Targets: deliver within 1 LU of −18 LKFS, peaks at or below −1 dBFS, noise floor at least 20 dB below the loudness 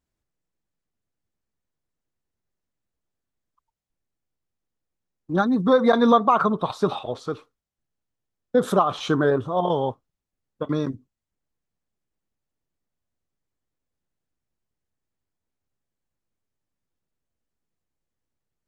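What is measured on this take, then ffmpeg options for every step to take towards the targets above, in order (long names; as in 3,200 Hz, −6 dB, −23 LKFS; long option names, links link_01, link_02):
integrated loudness −22.0 LKFS; sample peak −6.0 dBFS; target loudness −18.0 LKFS
→ -af "volume=4dB"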